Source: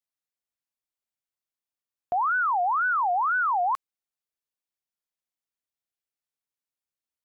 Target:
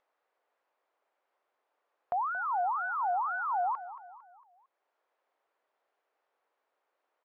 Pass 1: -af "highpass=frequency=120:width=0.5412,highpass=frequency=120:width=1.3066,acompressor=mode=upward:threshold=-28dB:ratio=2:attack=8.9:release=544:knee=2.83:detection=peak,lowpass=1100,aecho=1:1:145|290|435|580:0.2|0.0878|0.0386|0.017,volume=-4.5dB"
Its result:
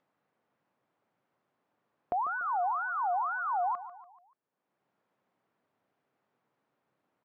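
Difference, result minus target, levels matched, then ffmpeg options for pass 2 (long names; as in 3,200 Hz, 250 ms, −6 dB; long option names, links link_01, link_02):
echo 82 ms early; 125 Hz band +7.0 dB
-af "highpass=frequency=430:width=0.5412,highpass=frequency=430:width=1.3066,acompressor=mode=upward:threshold=-28dB:ratio=2:attack=8.9:release=544:knee=2.83:detection=peak,lowpass=1100,aecho=1:1:227|454|681|908:0.2|0.0878|0.0386|0.017,volume=-4.5dB"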